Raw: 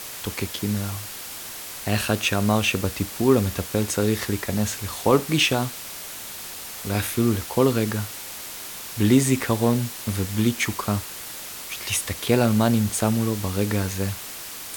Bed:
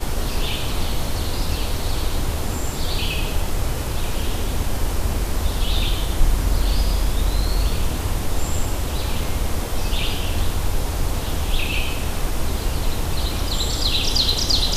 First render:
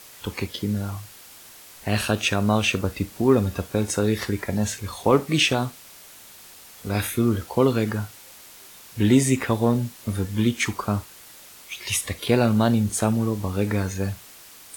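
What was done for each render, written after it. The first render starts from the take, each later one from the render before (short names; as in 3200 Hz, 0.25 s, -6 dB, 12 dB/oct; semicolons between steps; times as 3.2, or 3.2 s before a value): noise print and reduce 10 dB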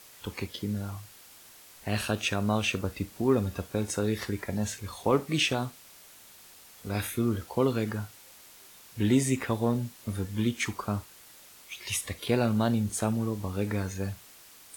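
gain -6.5 dB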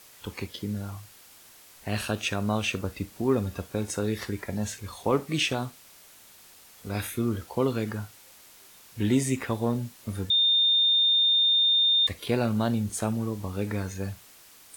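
10.3–12.07 bleep 3630 Hz -18.5 dBFS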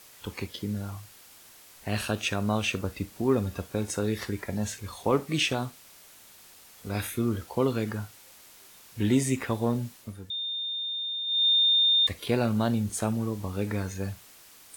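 9.95–11.47 dip -11 dB, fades 0.21 s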